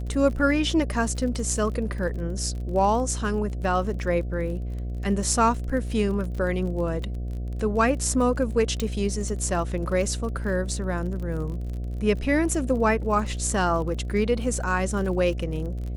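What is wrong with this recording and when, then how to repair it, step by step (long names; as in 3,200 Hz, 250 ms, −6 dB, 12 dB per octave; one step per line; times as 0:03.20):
mains buzz 60 Hz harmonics 12 −30 dBFS
surface crackle 35 per second −33 dBFS
0:08.80: click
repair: click removal
hum removal 60 Hz, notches 12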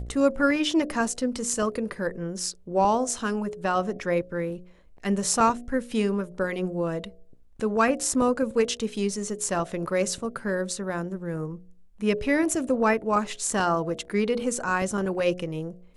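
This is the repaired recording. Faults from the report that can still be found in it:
none of them is left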